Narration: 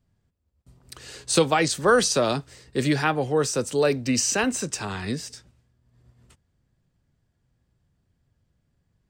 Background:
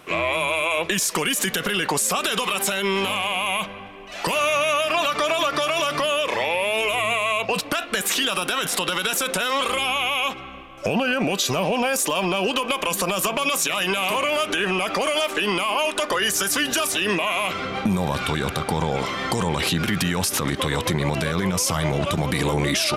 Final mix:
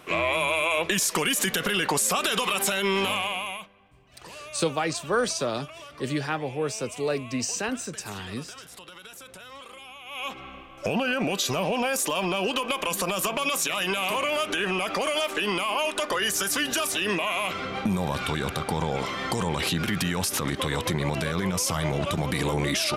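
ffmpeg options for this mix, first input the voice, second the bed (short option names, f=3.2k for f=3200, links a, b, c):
-filter_complex "[0:a]adelay=3250,volume=-6dB[a];[1:a]volume=15.5dB,afade=t=out:st=3.12:d=0.57:silence=0.105925,afade=t=in:st=10.05:d=0.41:silence=0.133352[b];[a][b]amix=inputs=2:normalize=0"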